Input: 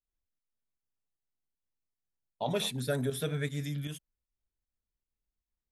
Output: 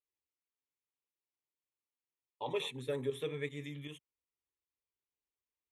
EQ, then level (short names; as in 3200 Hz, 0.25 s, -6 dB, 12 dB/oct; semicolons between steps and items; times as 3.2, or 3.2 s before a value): BPF 140–5700 Hz; fixed phaser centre 1000 Hz, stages 8; -1.0 dB